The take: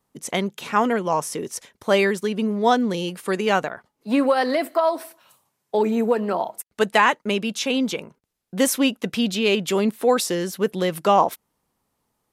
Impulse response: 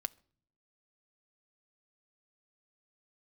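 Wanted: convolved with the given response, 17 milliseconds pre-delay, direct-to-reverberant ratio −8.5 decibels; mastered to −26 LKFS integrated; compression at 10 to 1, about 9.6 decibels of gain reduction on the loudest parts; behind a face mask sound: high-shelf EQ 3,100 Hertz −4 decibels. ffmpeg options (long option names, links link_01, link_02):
-filter_complex "[0:a]acompressor=threshold=-22dB:ratio=10,asplit=2[link_01][link_02];[1:a]atrim=start_sample=2205,adelay=17[link_03];[link_02][link_03]afir=irnorm=-1:irlink=0,volume=9.5dB[link_04];[link_01][link_04]amix=inputs=2:normalize=0,highshelf=frequency=3100:gain=-4,volume=-6.5dB"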